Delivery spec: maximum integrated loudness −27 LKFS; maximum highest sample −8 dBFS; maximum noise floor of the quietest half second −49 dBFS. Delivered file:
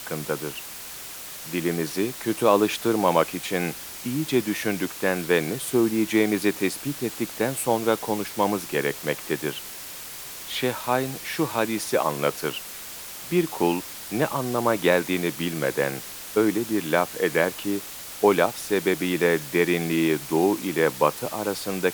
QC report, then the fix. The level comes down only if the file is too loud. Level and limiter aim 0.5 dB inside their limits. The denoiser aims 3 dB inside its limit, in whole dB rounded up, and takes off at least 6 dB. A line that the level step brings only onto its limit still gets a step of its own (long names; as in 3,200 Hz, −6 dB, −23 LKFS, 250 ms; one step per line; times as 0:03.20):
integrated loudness −24.5 LKFS: out of spec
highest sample −5.0 dBFS: out of spec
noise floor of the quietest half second −38 dBFS: out of spec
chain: broadband denoise 11 dB, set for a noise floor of −38 dBFS
level −3 dB
brickwall limiter −8.5 dBFS